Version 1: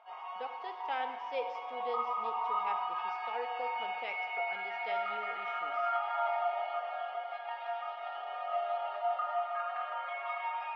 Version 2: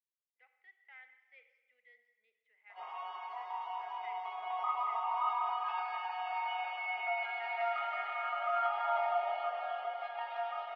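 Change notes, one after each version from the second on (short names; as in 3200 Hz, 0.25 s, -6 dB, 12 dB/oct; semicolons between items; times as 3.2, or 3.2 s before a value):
speech: add band-pass 2000 Hz, Q 16; background: entry +2.70 s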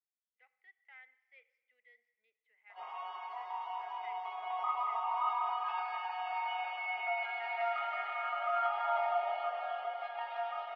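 speech: send -9.0 dB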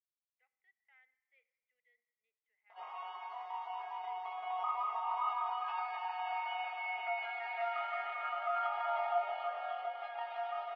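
speech -11.0 dB; background: send off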